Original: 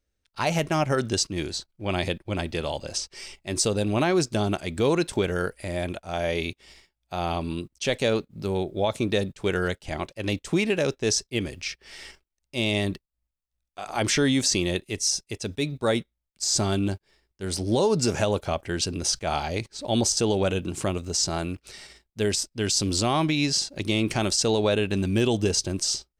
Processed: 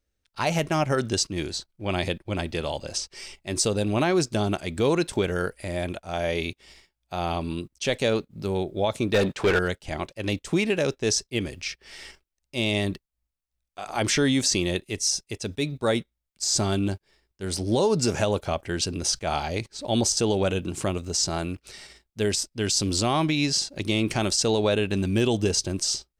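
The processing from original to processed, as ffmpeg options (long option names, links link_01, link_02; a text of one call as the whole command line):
ffmpeg -i in.wav -filter_complex "[0:a]asettb=1/sr,asplit=3[link_01][link_02][link_03];[link_01]atrim=end=9.144[link_04];[link_02]atrim=start=9.14:end=9.59,asetpts=PTS-STARTPTS,afade=type=in:duration=0.004:curve=qsin,afade=type=out:start_time=0.446:duration=0.004:curve=qsin,asplit=2[link_05][link_06];[link_06]highpass=frequency=720:poles=1,volume=25dB,asoftclip=type=tanh:threshold=-12.5dB[link_07];[link_05][link_07]amix=inputs=2:normalize=0,lowpass=frequency=2200:poles=1,volume=-6dB[link_08];[link_03]atrim=start=9.586[link_09];[link_04][link_08]acrossfade=duration=0.004:curve1=hsin:curve2=qsin[link_10];[link_10][link_09]acrossfade=duration=0.004:curve1=qsin:curve2=hsin" out.wav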